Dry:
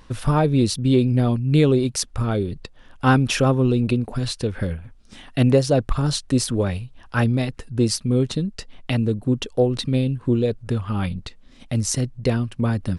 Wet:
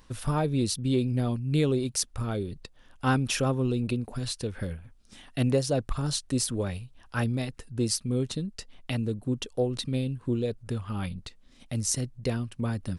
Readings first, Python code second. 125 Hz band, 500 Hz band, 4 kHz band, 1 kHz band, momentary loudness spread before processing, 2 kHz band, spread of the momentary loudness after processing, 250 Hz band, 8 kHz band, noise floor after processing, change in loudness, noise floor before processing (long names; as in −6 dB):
−8.5 dB, −8.5 dB, −5.5 dB, −8.5 dB, 10 LU, −7.5 dB, 10 LU, −8.5 dB, −3.0 dB, −57 dBFS, −8.0 dB, −48 dBFS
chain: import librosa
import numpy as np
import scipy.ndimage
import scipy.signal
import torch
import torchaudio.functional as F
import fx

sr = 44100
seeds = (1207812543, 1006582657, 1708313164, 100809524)

y = fx.high_shelf(x, sr, hz=5900.0, db=9.0)
y = y * librosa.db_to_amplitude(-8.5)